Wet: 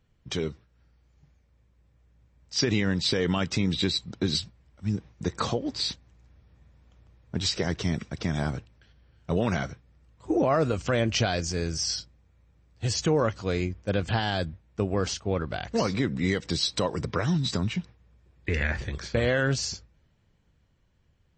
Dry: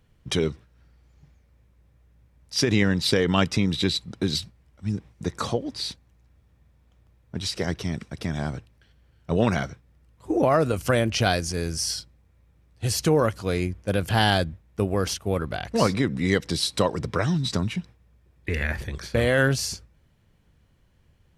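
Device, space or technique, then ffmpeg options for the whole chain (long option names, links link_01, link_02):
low-bitrate web radio: -filter_complex "[0:a]asettb=1/sr,asplit=3[link_01][link_02][link_03];[link_01]atrim=end=14.204[link_04];[link_02]atrim=start=14.2:end=15.01,asetpts=PTS-STARTPTS,afade=type=in:duration=0.004:curve=qsin,afade=type=out:start_time=0.806:duration=0.004:curve=qsin,highpass=45[link_05];[link_03]atrim=start=15.006[link_06];[link_04][link_05]acrossfade=duration=0.004:curve1=hsin:curve2=qsin[link_07];[link_07][link_06]acrossfade=duration=0.004:curve1=qsin:curve2=hsin,dynaudnorm=framelen=250:gausssize=17:maxgain=16.5dB,alimiter=limit=-8dB:level=0:latency=1:release=93,volume=-5.5dB" -ar 24000 -c:a libmp3lame -b:a 32k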